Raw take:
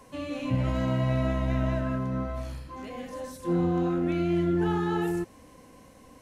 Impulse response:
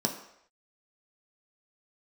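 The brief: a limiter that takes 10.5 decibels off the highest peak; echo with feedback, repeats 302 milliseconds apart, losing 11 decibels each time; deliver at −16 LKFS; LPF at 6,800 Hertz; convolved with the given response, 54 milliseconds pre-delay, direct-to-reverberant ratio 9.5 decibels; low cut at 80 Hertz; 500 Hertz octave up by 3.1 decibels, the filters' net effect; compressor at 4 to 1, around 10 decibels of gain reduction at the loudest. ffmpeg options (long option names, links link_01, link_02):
-filter_complex "[0:a]highpass=80,lowpass=6800,equalizer=frequency=500:width_type=o:gain=5,acompressor=threshold=-33dB:ratio=4,alimiter=level_in=10.5dB:limit=-24dB:level=0:latency=1,volume=-10.5dB,aecho=1:1:302|604|906:0.282|0.0789|0.0221,asplit=2[link_01][link_02];[1:a]atrim=start_sample=2205,adelay=54[link_03];[link_02][link_03]afir=irnorm=-1:irlink=0,volume=-16.5dB[link_04];[link_01][link_04]amix=inputs=2:normalize=0,volume=25dB"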